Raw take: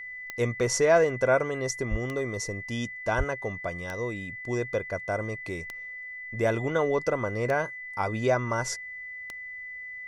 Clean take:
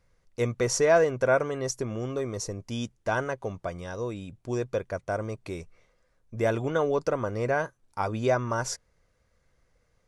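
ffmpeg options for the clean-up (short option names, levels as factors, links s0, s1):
-filter_complex "[0:a]adeclick=t=4,bandreject=f=2000:w=30,asplit=3[s0][s1][s2];[s0]afade=t=out:st=1.9:d=0.02[s3];[s1]highpass=f=140:w=0.5412,highpass=f=140:w=1.3066,afade=t=in:st=1.9:d=0.02,afade=t=out:st=2.02:d=0.02[s4];[s2]afade=t=in:st=2.02:d=0.02[s5];[s3][s4][s5]amix=inputs=3:normalize=0,asplit=3[s6][s7][s8];[s6]afade=t=out:st=3.17:d=0.02[s9];[s7]highpass=f=140:w=0.5412,highpass=f=140:w=1.3066,afade=t=in:st=3.17:d=0.02,afade=t=out:st=3.29:d=0.02[s10];[s8]afade=t=in:st=3.29:d=0.02[s11];[s9][s10][s11]amix=inputs=3:normalize=0"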